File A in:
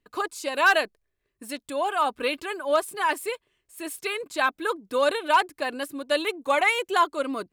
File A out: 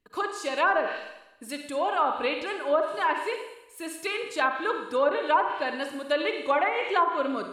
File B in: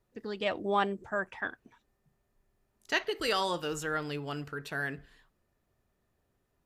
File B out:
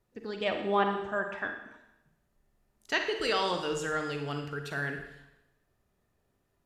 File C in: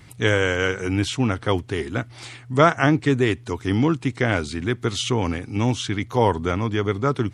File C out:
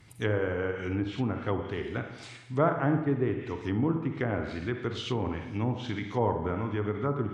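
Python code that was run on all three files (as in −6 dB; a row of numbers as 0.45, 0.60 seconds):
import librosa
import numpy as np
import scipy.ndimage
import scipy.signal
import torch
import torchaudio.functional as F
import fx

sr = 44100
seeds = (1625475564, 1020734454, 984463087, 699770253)

y = fx.rev_schroeder(x, sr, rt60_s=0.9, comb_ms=38, drr_db=5.0)
y = fx.env_lowpass_down(y, sr, base_hz=1200.0, full_db=-16.0)
y = librosa.util.normalize(y) * 10.0 ** (-12 / 20.0)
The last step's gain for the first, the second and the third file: −1.5, 0.0, −8.5 decibels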